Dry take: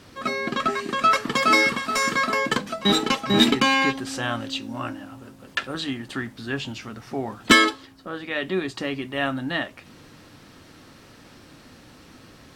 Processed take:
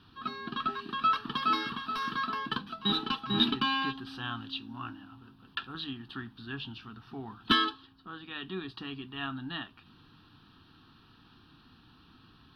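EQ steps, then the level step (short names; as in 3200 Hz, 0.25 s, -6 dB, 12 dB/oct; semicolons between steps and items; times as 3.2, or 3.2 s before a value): resonant high shelf 4900 Hz -10 dB, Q 1.5; fixed phaser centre 2100 Hz, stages 6; -8.0 dB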